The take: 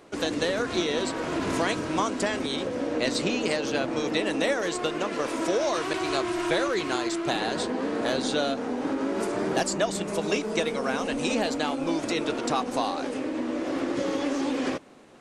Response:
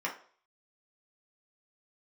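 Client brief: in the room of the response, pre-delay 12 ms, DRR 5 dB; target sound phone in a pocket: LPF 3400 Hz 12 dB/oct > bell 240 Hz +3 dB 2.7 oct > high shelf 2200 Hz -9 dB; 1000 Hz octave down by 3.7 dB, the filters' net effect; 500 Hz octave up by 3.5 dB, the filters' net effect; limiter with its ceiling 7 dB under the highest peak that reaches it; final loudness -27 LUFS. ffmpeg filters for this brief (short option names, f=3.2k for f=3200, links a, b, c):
-filter_complex "[0:a]equalizer=f=500:t=o:g=4,equalizer=f=1k:t=o:g=-6.5,alimiter=limit=-18.5dB:level=0:latency=1,asplit=2[a][b];[1:a]atrim=start_sample=2205,adelay=12[c];[b][c]afir=irnorm=-1:irlink=0,volume=-11dB[d];[a][d]amix=inputs=2:normalize=0,lowpass=3.4k,equalizer=f=240:t=o:w=2.7:g=3,highshelf=f=2.2k:g=-9,volume=-1dB"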